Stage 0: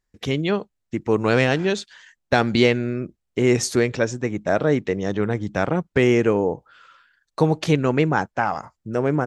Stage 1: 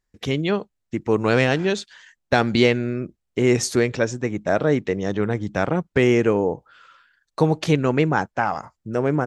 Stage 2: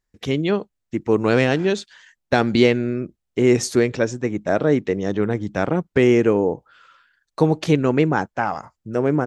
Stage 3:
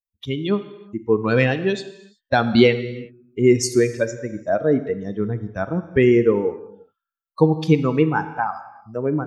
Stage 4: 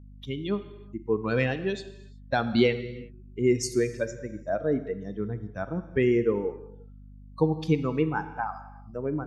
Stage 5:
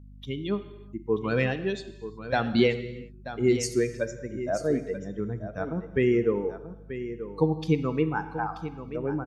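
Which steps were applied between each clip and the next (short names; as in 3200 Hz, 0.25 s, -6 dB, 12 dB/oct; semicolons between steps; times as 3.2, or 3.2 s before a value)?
nothing audible
dynamic EQ 310 Hz, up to +4 dB, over -27 dBFS, Q 0.91; gain -1 dB
per-bin expansion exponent 2; non-linear reverb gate 0.4 s falling, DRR 10.5 dB; gain +4 dB
hum 50 Hz, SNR 19 dB; gain -8 dB
echo 0.934 s -12 dB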